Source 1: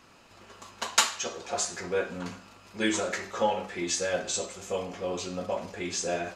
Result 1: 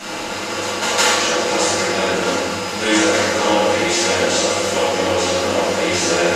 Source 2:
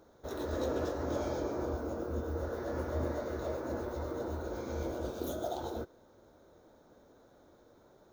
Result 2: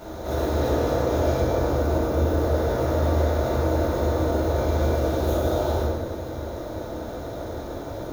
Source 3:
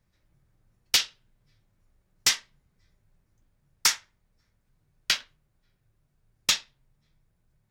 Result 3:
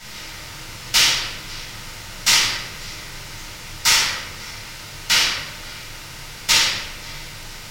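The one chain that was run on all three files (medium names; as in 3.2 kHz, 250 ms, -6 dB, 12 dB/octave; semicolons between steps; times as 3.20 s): spectral levelling over time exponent 0.4; simulated room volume 500 m³, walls mixed, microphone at 7.3 m; trim -7.5 dB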